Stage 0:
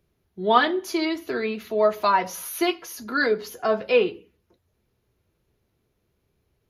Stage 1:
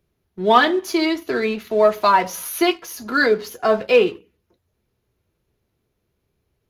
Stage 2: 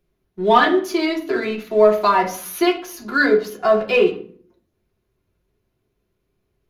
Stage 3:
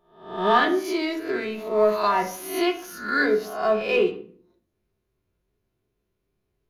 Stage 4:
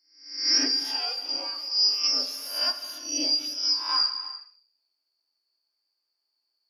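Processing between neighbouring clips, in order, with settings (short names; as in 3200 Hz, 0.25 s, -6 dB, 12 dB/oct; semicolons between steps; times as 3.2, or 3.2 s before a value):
sample leveller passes 1; gain +1.5 dB
reverb RT60 0.50 s, pre-delay 3 ms, DRR 0.5 dB; gain -3 dB
spectral swells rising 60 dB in 0.56 s; gain -7 dB
four-band scrambler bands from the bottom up 2341; steep high-pass 270 Hz 96 dB/oct; non-linear reverb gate 0.39 s flat, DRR 10 dB; gain -4 dB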